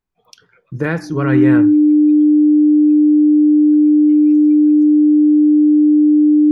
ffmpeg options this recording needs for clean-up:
ffmpeg -i in.wav -af "bandreject=frequency=300:width=30" out.wav

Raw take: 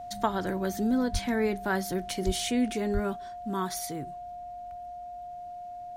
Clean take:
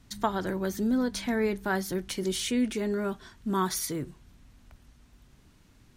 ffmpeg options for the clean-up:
ffmpeg -i in.wav -filter_complex "[0:a]bandreject=frequency=710:width=30,asplit=3[link_01][link_02][link_03];[link_01]afade=type=out:start_time=1.12:duration=0.02[link_04];[link_02]highpass=frequency=140:width=0.5412,highpass=frequency=140:width=1.3066,afade=type=in:start_time=1.12:duration=0.02,afade=type=out:start_time=1.24:duration=0.02[link_05];[link_03]afade=type=in:start_time=1.24:duration=0.02[link_06];[link_04][link_05][link_06]amix=inputs=3:normalize=0,asplit=3[link_07][link_08][link_09];[link_07]afade=type=out:start_time=2.25:duration=0.02[link_10];[link_08]highpass=frequency=140:width=0.5412,highpass=frequency=140:width=1.3066,afade=type=in:start_time=2.25:duration=0.02,afade=type=out:start_time=2.37:duration=0.02[link_11];[link_09]afade=type=in:start_time=2.37:duration=0.02[link_12];[link_10][link_11][link_12]amix=inputs=3:normalize=0,asplit=3[link_13][link_14][link_15];[link_13]afade=type=out:start_time=2.93:duration=0.02[link_16];[link_14]highpass=frequency=140:width=0.5412,highpass=frequency=140:width=1.3066,afade=type=in:start_time=2.93:duration=0.02,afade=type=out:start_time=3.05:duration=0.02[link_17];[link_15]afade=type=in:start_time=3.05:duration=0.02[link_18];[link_16][link_17][link_18]amix=inputs=3:normalize=0,asetnsamples=nb_out_samples=441:pad=0,asendcmd='3.16 volume volume 4dB',volume=0dB" out.wav

